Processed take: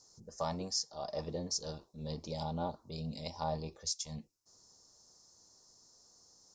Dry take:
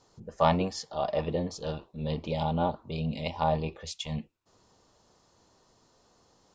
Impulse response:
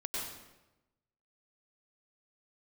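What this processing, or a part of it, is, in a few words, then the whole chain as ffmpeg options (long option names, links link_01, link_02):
over-bright horn tweeter: -af "highshelf=frequency=4000:width_type=q:width=3:gain=11.5,alimiter=limit=-14dB:level=0:latency=1:release=413,volume=-9dB"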